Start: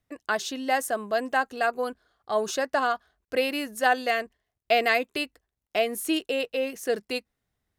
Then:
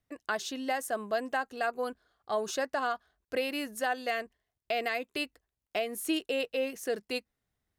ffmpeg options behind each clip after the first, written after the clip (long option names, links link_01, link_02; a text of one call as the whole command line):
ffmpeg -i in.wav -af "alimiter=limit=-17dB:level=0:latency=1:release=275,volume=-3.5dB" out.wav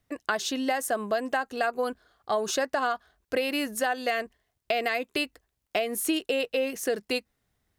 ffmpeg -i in.wav -af "acompressor=threshold=-32dB:ratio=3,volume=8dB" out.wav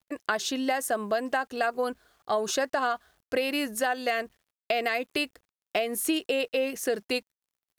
ffmpeg -i in.wav -af "acrusher=bits=10:mix=0:aa=0.000001" out.wav